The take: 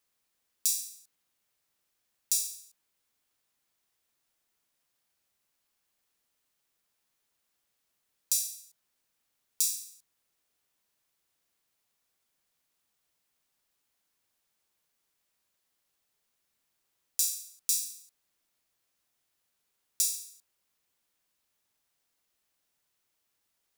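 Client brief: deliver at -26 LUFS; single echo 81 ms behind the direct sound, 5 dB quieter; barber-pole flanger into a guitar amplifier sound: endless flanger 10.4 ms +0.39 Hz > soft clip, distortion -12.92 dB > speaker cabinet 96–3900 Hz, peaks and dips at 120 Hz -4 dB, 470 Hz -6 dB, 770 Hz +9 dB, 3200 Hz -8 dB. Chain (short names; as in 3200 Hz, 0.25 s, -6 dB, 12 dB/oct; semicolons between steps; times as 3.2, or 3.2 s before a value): echo 81 ms -5 dB; endless flanger 10.4 ms +0.39 Hz; soft clip -24.5 dBFS; speaker cabinet 96–3900 Hz, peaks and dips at 120 Hz -4 dB, 470 Hz -6 dB, 770 Hz +9 dB, 3200 Hz -8 dB; gain +26 dB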